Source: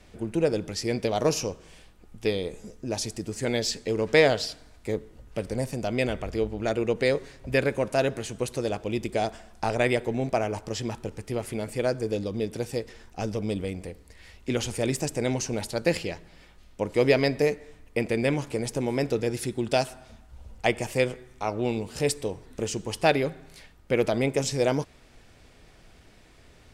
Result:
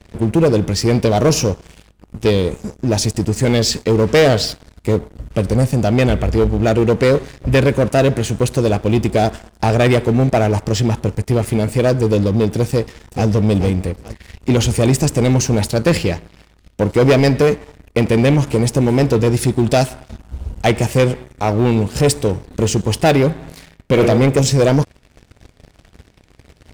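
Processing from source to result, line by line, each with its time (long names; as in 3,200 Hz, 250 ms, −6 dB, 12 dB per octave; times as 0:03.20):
0:12.68–0:13.28: delay throw 430 ms, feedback 40%, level −10 dB
0:23.31–0:24.01: thrown reverb, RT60 0.94 s, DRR 4 dB
whole clip: high-pass filter 41 Hz 12 dB per octave; low-shelf EQ 220 Hz +11 dB; leveller curve on the samples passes 3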